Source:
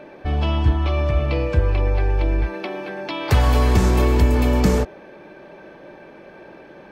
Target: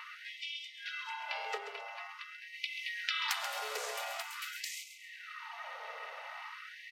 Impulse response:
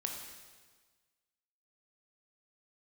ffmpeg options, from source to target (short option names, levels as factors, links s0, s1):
-filter_complex "[0:a]equalizer=f=240:w=0.33:g=-15,acompressor=threshold=0.0126:ratio=4,aeval=exprs='val(0)*sin(2*PI*310*n/s)':c=same,asplit=2[s0][s1];[s1]aecho=0:1:134|268|402|536:0.316|0.111|0.0387|0.0136[s2];[s0][s2]amix=inputs=2:normalize=0,afftfilt=real='re*gte(b*sr/1024,390*pow(2000/390,0.5+0.5*sin(2*PI*0.46*pts/sr)))':imag='im*gte(b*sr/1024,390*pow(2000/390,0.5+0.5*sin(2*PI*0.46*pts/sr)))':win_size=1024:overlap=0.75,volume=2.82"